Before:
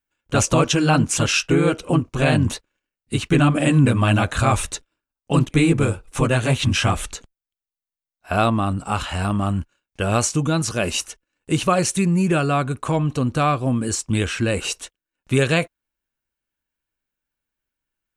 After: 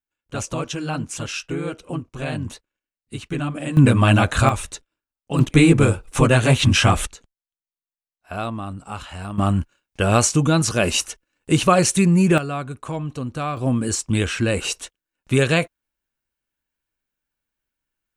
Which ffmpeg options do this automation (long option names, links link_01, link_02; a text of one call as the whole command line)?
ffmpeg -i in.wav -af "asetnsamples=nb_out_samples=441:pad=0,asendcmd='3.77 volume volume 2.5dB;4.49 volume volume -5dB;5.39 volume volume 3.5dB;7.07 volume volume -9dB;9.38 volume volume 3dB;12.38 volume volume -7dB;13.57 volume volume 0.5dB',volume=-9.5dB" out.wav